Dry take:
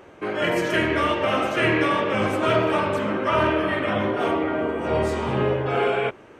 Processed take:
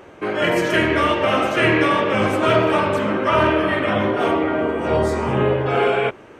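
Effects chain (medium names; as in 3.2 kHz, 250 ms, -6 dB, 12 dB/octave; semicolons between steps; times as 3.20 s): 4.95–5.59 s: peaking EQ 2.1 kHz -> 6.5 kHz -12.5 dB 0.37 oct; trim +4 dB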